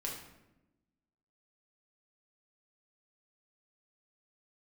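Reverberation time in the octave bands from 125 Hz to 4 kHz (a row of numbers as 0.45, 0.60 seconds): 1.3, 1.5, 1.1, 0.85, 0.80, 0.60 seconds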